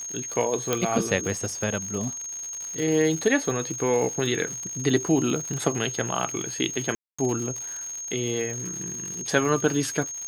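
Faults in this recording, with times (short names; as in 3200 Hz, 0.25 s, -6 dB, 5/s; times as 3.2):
crackle 170/s -31 dBFS
tone 6500 Hz -32 dBFS
0.73 pop -8 dBFS
6.95–7.18 gap 0.235 s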